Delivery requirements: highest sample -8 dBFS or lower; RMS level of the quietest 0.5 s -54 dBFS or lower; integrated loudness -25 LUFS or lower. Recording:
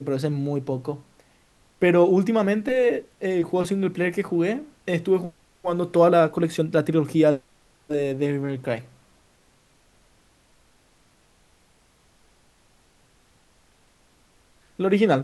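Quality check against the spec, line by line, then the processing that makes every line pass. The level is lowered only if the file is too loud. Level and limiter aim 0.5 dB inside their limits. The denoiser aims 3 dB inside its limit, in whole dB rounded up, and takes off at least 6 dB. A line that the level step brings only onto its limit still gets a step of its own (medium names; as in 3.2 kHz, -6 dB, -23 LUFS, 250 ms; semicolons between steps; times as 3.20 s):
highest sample -5.0 dBFS: fail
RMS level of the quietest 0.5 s -60 dBFS: pass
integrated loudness -23.0 LUFS: fail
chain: trim -2.5 dB; peak limiter -8.5 dBFS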